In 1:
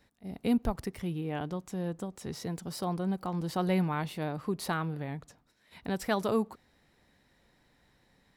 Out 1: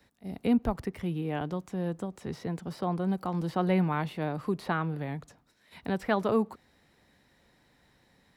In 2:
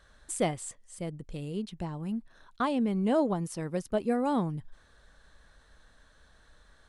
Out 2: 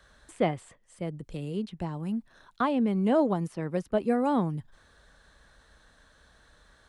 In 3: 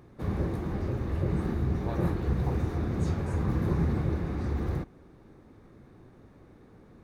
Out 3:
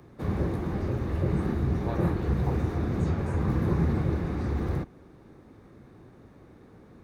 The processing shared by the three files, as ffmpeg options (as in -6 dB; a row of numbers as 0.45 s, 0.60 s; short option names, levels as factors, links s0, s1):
-filter_complex "[0:a]highpass=f=45:p=1,acrossover=split=150|720|3300[s0][s1][s2][s3];[s3]acompressor=threshold=0.00112:ratio=6[s4];[s0][s1][s2][s4]amix=inputs=4:normalize=0,volume=1.33"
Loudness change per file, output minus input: +2.0 LU, +2.5 LU, +2.0 LU